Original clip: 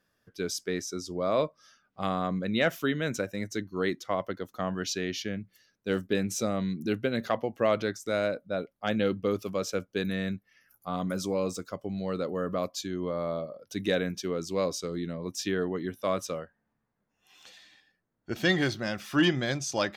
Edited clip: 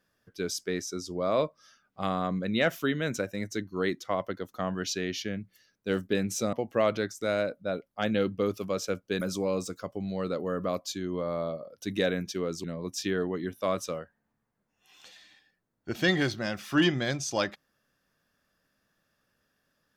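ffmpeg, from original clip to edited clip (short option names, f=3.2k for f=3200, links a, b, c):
-filter_complex "[0:a]asplit=4[a][b][c][d];[a]atrim=end=6.532[e];[b]atrim=start=7.378:end=10.062[f];[c]atrim=start=11.098:end=14.532[g];[d]atrim=start=15.048[h];[e][f]acrossfade=d=0.004:c1=hsin:c2=hsin[i];[i][g]acrossfade=d=0.004:c1=hsin:c2=hsin[j];[j][h]acrossfade=d=0.004:c1=hsin:c2=hsin"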